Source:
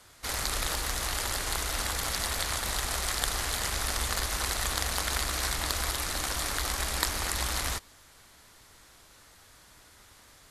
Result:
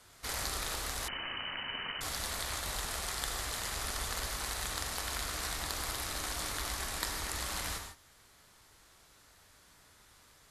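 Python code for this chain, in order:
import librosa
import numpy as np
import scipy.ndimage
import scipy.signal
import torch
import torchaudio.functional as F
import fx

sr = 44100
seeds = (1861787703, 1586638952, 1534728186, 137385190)

y = fx.rider(x, sr, range_db=10, speed_s=0.5)
y = fx.rev_gated(y, sr, seeds[0], gate_ms=180, shape='flat', drr_db=3.0)
y = fx.freq_invert(y, sr, carrier_hz=3000, at=(1.08, 2.01))
y = y * 10.0 ** (-7.5 / 20.0)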